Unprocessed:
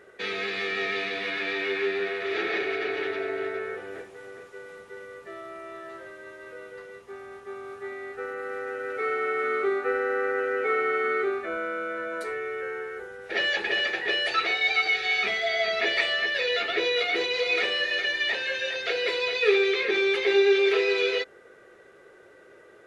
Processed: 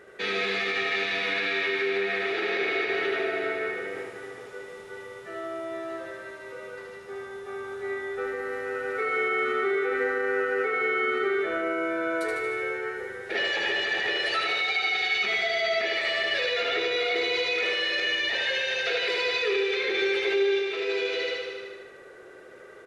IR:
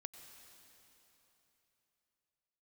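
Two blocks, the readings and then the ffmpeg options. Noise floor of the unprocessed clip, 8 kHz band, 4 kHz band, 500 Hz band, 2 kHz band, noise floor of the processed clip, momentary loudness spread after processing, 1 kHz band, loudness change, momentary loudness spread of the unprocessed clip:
-53 dBFS, no reading, 0.0 dB, -1.0 dB, 0.0 dB, -46 dBFS, 15 LU, 0.0 dB, -0.5 dB, 20 LU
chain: -filter_complex "[0:a]aecho=1:1:76|152|228|304|380|456|532|608|684:0.668|0.401|0.241|0.144|0.0866|0.052|0.0312|0.0187|0.0112,alimiter=limit=0.0944:level=0:latency=1[s0];[1:a]atrim=start_sample=2205,afade=t=out:st=0.43:d=0.01,atrim=end_sample=19404[s1];[s0][s1]afir=irnorm=-1:irlink=0,volume=2.37"

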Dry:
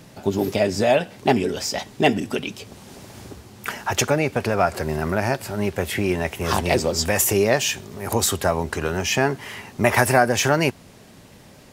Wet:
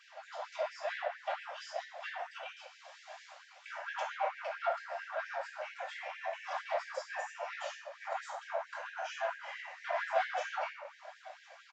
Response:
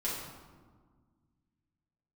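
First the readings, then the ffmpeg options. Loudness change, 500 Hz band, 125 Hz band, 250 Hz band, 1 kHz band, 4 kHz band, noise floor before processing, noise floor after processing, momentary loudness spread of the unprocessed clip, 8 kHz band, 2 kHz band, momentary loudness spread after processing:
-18.0 dB, -18.0 dB, under -40 dB, under -40 dB, -12.5 dB, -20.5 dB, -47 dBFS, -59 dBFS, 14 LU, -30.5 dB, -14.5 dB, 15 LU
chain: -filter_complex "[0:a]lowshelf=f=400:g=-7,aphaser=in_gain=1:out_gain=1:delay=2.9:decay=0.38:speed=0.25:type=sinusoidal,acrossover=split=180|1100[s0][s1][s2];[s2]acompressor=threshold=0.0112:ratio=5[s3];[s0][s1][s3]amix=inputs=3:normalize=0,bass=f=250:g=11,treble=f=4000:g=-9,aresample=16000,asoftclip=type=tanh:threshold=0.126,aresample=44100,aecho=1:1:1055:0.0944[s4];[1:a]atrim=start_sample=2205,asetrate=70560,aresample=44100[s5];[s4][s5]afir=irnorm=-1:irlink=0,afftfilt=real='re*gte(b*sr/1024,510*pow(1600/510,0.5+0.5*sin(2*PI*4.4*pts/sr)))':imag='im*gte(b*sr/1024,510*pow(1600/510,0.5+0.5*sin(2*PI*4.4*pts/sr)))':win_size=1024:overlap=0.75,volume=0.596"

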